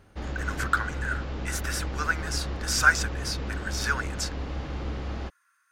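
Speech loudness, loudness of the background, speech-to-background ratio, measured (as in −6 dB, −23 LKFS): −29.0 LKFS, −34.5 LKFS, 5.5 dB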